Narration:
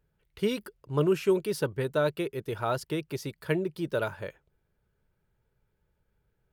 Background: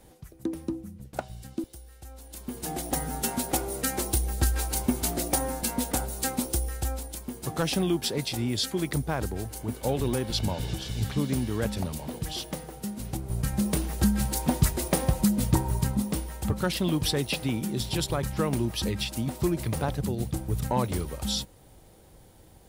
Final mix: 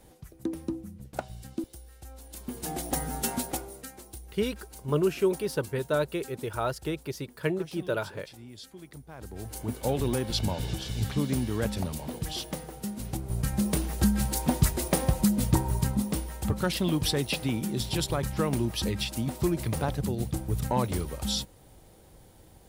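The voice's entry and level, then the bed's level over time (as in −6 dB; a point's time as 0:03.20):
3.95 s, −0.5 dB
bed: 0:03.37 −1 dB
0:03.98 −18 dB
0:09.09 −18 dB
0:09.54 −0.5 dB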